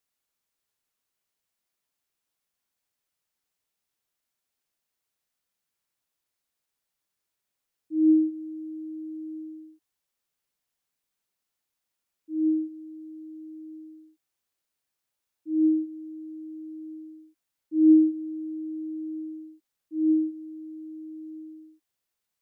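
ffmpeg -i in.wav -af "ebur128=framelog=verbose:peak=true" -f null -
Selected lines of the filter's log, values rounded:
Integrated loudness:
  I:         -26.2 LUFS
  Threshold: -39.0 LUFS
Loudness range:
  LRA:        12.3 LU
  Threshold: -50.3 LUFS
  LRA low:   -38.2 LUFS
  LRA high:  -25.9 LUFS
True peak:
  Peak:      -10.2 dBFS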